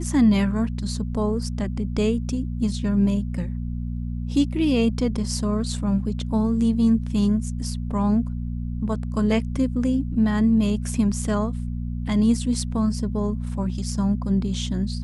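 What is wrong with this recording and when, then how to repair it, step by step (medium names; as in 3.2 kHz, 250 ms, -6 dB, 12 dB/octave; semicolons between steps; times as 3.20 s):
hum 60 Hz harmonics 4 -28 dBFS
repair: de-hum 60 Hz, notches 4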